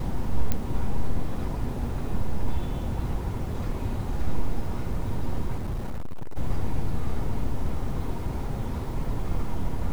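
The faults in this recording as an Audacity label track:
0.520000	0.520000	click −10 dBFS
5.570000	6.370000	clipping −25.5 dBFS

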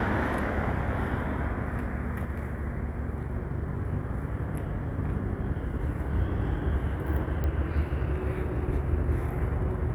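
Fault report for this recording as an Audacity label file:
7.440000	7.440000	click −20 dBFS

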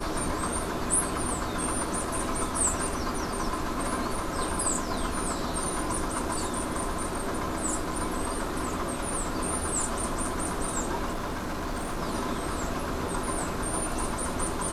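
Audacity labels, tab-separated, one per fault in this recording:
11.110000	11.990000	clipping −28 dBFS

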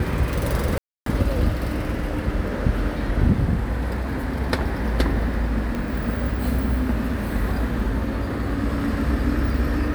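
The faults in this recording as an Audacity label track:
0.780000	1.060000	drop-out 283 ms
5.750000	5.750000	click

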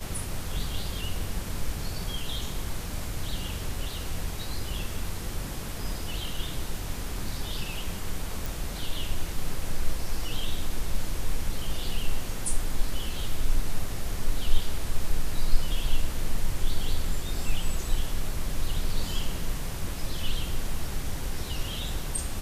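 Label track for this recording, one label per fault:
8.460000	8.460000	click

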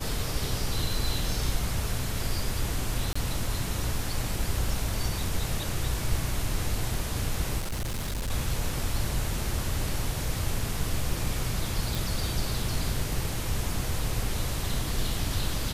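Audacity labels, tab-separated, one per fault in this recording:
3.130000	3.150000	drop-out 25 ms
7.590000	8.300000	clipping −27.5 dBFS
11.950000	11.950000	click

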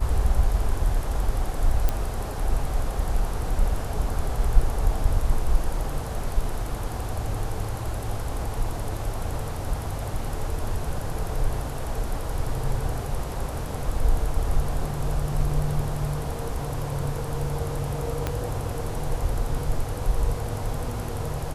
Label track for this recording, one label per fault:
1.890000	1.890000	click −10 dBFS
18.270000	18.270000	click −12 dBFS

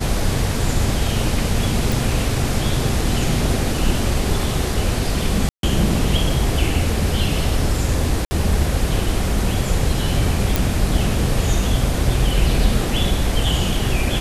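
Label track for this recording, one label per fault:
1.920000	1.920000	click
5.490000	5.630000	drop-out 142 ms
8.250000	8.310000	drop-out 60 ms
10.560000	10.560000	click

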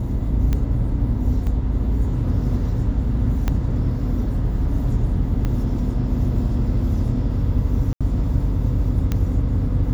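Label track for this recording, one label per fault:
0.530000	0.530000	click −11 dBFS
1.470000	1.470000	drop-out 2.7 ms
3.480000	3.480000	click −9 dBFS
5.450000	5.450000	click −13 dBFS
7.930000	8.010000	drop-out 76 ms
9.120000	9.120000	click −10 dBFS

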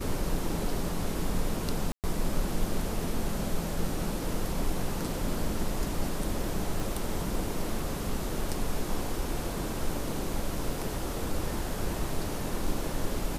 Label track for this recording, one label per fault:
1.920000	2.040000	drop-out 118 ms
6.800000	6.800000	click

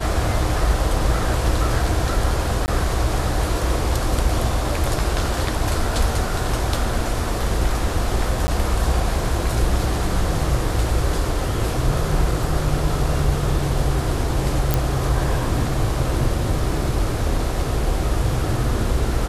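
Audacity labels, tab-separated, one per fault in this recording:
2.660000	2.680000	drop-out 19 ms
8.470000	8.480000	drop-out 10 ms
14.740000	14.740000	click

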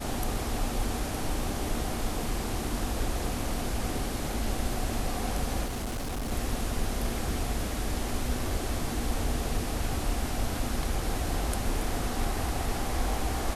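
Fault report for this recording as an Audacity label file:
5.650000	6.320000	clipping −29.5 dBFS

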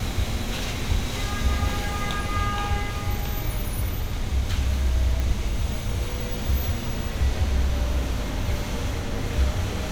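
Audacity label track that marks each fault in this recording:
5.200000	5.200000	click

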